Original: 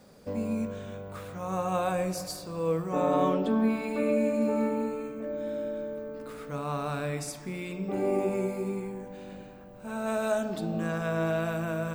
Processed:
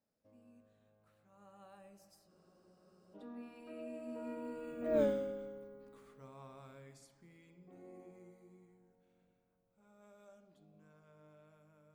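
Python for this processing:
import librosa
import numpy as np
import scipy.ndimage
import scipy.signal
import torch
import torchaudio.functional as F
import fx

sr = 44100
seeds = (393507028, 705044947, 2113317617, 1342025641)

y = fx.doppler_pass(x, sr, speed_mps=25, closest_m=1.4, pass_at_s=5.0)
y = fx.spec_freeze(y, sr, seeds[0], at_s=2.31, hold_s=0.83)
y = y * 10.0 ** (6.0 / 20.0)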